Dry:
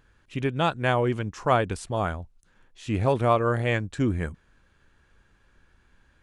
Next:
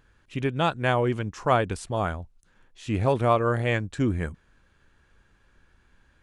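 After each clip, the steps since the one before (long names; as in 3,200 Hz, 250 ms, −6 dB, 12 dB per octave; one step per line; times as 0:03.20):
no processing that can be heard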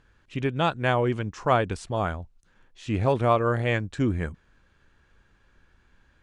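low-pass filter 7,800 Hz 12 dB per octave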